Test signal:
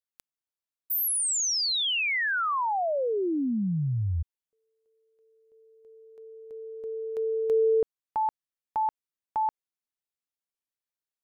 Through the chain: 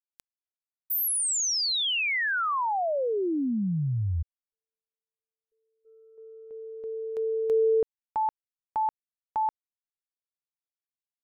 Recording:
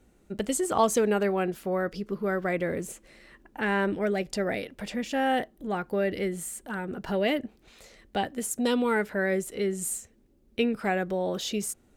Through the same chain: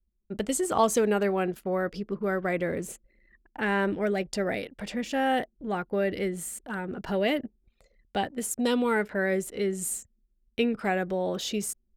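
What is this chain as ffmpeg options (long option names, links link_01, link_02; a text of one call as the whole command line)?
ffmpeg -i in.wav -af "anlmdn=0.0251,agate=range=-7dB:threshold=-53dB:ratio=3:release=355:detection=rms" out.wav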